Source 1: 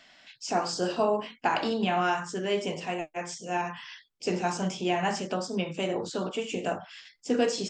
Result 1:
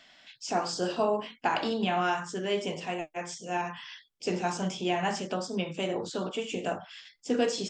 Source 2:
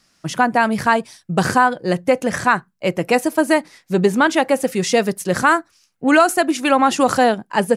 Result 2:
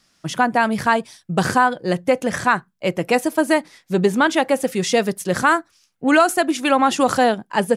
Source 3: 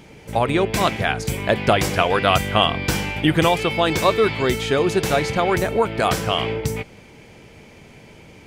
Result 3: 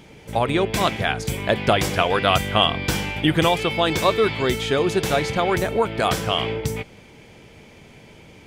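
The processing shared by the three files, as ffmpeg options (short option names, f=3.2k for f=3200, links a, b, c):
-af "equalizer=f=3.4k:w=6.5:g=4,volume=-1.5dB"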